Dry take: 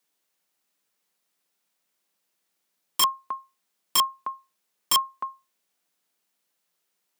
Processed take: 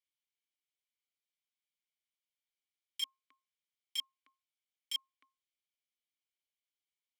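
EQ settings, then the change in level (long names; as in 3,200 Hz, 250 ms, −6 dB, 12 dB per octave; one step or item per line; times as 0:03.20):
formant filter i
first difference
+6.0 dB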